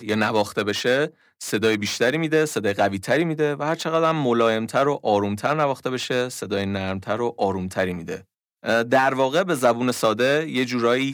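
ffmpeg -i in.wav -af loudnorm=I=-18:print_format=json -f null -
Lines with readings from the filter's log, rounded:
"input_i" : "-21.8",
"input_tp" : "-6.3",
"input_lra" : "3.0",
"input_thresh" : "-32.0",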